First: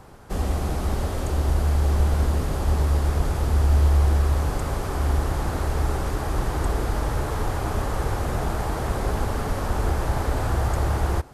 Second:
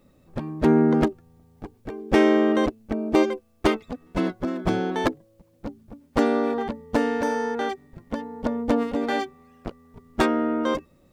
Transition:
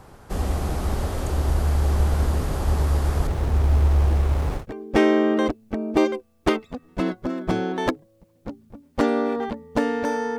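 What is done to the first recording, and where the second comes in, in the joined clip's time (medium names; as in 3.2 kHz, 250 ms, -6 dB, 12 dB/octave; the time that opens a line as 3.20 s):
first
3.27–4.66 s: sliding maximum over 17 samples
4.60 s: go over to second from 1.78 s, crossfade 0.12 s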